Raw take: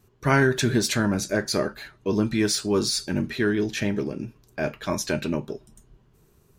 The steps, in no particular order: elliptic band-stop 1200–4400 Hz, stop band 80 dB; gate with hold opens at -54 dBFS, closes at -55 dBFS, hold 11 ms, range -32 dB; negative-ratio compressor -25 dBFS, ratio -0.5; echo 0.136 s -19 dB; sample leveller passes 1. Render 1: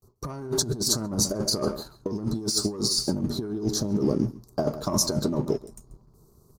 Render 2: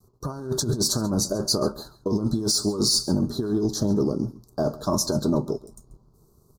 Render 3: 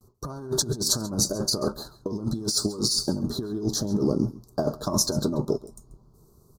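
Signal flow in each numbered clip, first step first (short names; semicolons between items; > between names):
elliptic band-stop > gate with hold > sample leveller > echo > negative-ratio compressor; negative-ratio compressor > sample leveller > echo > gate with hold > elliptic band-stop; gate with hold > sample leveller > elliptic band-stop > negative-ratio compressor > echo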